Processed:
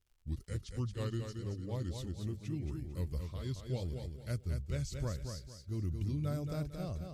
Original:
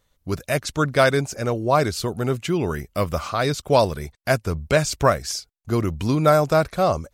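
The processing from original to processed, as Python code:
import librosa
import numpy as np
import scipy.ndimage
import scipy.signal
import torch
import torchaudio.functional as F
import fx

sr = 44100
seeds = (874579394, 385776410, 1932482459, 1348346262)

p1 = fx.pitch_glide(x, sr, semitones=-4.0, runs='ending unshifted')
p2 = fx.tone_stack(p1, sr, knobs='10-0-1')
p3 = p2 + fx.echo_feedback(p2, sr, ms=225, feedback_pct=31, wet_db=-6.0, dry=0)
p4 = fx.dmg_crackle(p3, sr, seeds[0], per_s=100.0, level_db=-63.0)
y = F.gain(torch.from_numpy(p4), 1.0).numpy()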